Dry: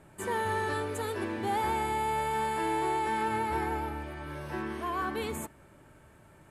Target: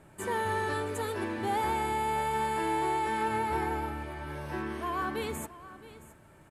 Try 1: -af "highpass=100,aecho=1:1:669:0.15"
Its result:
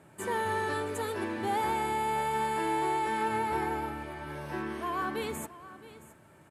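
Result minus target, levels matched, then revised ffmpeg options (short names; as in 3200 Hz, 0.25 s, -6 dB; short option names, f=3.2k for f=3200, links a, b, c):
125 Hz band -3.0 dB
-af "aecho=1:1:669:0.15"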